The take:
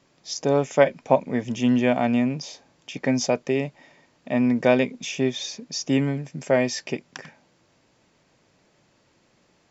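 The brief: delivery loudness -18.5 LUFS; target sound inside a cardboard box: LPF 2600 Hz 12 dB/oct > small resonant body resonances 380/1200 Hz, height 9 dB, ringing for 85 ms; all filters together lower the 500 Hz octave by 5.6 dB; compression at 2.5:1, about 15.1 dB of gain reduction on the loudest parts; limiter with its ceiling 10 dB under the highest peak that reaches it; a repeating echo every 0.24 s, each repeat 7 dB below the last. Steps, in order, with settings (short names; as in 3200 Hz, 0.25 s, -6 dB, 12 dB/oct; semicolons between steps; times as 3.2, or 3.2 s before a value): bell 500 Hz -7 dB; compressor 2.5:1, threshold -40 dBFS; limiter -30.5 dBFS; LPF 2600 Hz 12 dB/oct; feedback echo 0.24 s, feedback 45%, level -7 dB; small resonant body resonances 380/1200 Hz, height 9 dB, ringing for 85 ms; gain +23 dB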